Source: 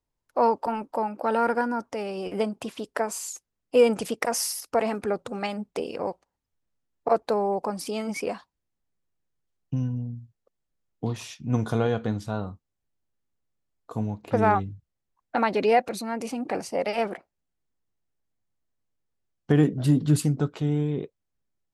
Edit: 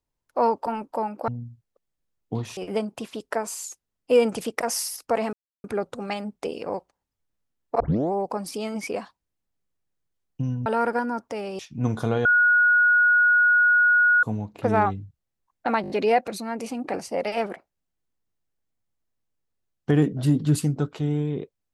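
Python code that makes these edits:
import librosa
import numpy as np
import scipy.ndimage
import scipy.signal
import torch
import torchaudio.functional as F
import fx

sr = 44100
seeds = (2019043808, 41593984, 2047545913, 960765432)

y = fx.edit(x, sr, fx.swap(start_s=1.28, length_s=0.93, other_s=9.99, other_length_s=1.29),
    fx.insert_silence(at_s=4.97, length_s=0.31),
    fx.tape_start(start_s=7.13, length_s=0.32),
    fx.bleep(start_s=11.94, length_s=1.98, hz=1450.0, db=-14.5),
    fx.stutter(start_s=15.51, slice_s=0.02, count=5), tone=tone)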